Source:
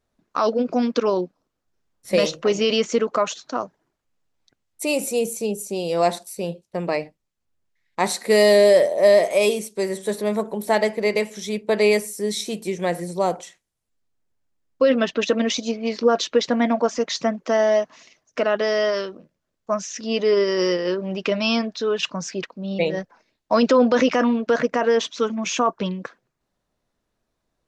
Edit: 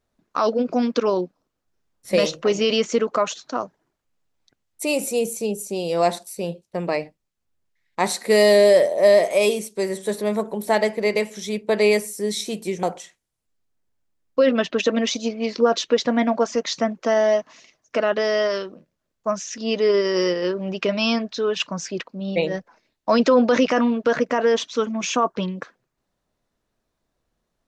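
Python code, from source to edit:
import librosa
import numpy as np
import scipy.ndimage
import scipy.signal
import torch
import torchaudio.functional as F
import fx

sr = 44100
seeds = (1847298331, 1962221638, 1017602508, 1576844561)

y = fx.edit(x, sr, fx.cut(start_s=12.83, length_s=0.43), tone=tone)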